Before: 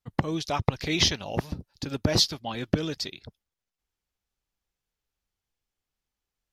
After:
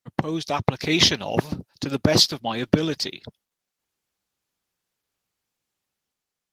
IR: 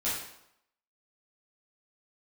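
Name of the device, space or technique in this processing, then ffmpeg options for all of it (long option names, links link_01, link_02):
video call: -af "highpass=130,dynaudnorm=framelen=200:gausssize=7:maxgain=5dB,volume=3dB" -ar 48000 -c:a libopus -b:a 20k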